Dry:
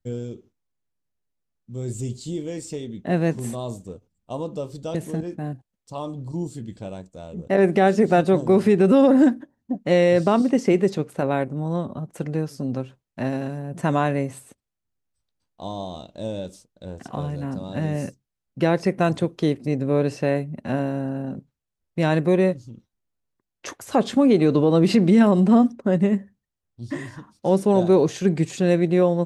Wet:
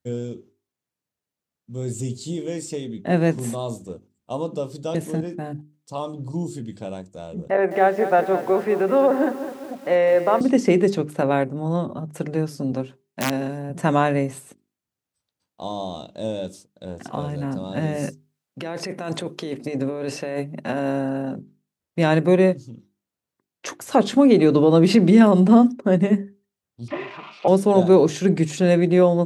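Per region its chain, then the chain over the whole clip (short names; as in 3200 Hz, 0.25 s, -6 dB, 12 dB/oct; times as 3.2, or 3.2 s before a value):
7.5–10.41 three-band isolator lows -16 dB, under 420 Hz, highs -18 dB, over 2200 Hz + lo-fi delay 0.207 s, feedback 55%, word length 7-bit, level -11 dB
12.72–13.7 HPF 120 Hz + wrapped overs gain 16 dB + notch 1300 Hz, Q 17
18.03–21.36 low shelf 180 Hz -11.5 dB + negative-ratio compressor -28 dBFS
26.88–27.48 switching spikes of -23.5 dBFS + speaker cabinet 260–2800 Hz, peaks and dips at 260 Hz -7 dB, 390 Hz +5 dB, 700 Hz +9 dB, 1200 Hz +7 dB, 1700 Hz -10 dB, 2500 Hz +8 dB + comb 5 ms, depth 37%
whole clip: HPF 110 Hz; notches 50/100/150/200/250/300/350/400 Hz; gain +3 dB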